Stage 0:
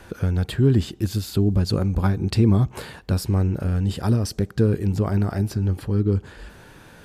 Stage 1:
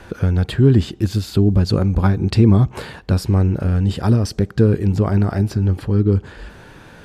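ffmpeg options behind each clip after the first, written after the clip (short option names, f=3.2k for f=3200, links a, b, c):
-af "highshelf=f=8.6k:g=-11.5,volume=5dB"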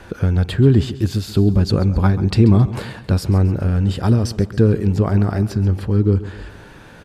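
-af "aecho=1:1:135|270|405|540:0.158|0.0761|0.0365|0.0175"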